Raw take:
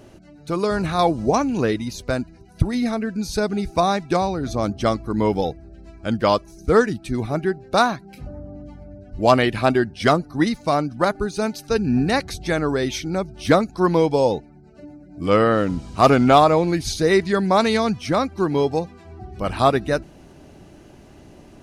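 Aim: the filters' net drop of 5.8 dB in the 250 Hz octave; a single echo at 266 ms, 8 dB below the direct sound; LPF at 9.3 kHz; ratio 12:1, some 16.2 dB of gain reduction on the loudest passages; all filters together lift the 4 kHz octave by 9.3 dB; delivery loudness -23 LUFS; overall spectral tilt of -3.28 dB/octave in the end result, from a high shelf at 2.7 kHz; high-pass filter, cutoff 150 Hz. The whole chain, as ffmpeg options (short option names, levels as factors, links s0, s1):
-af "highpass=150,lowpass=9300,equalizer=f=250:t=o:g=-7,highshelf=f=2700:g=9,equalizer=f=4000:t=o:g=4,acompressor=threshold=0.0631:ratio=12,aecho=1:1:266:0.398,volume=1.88"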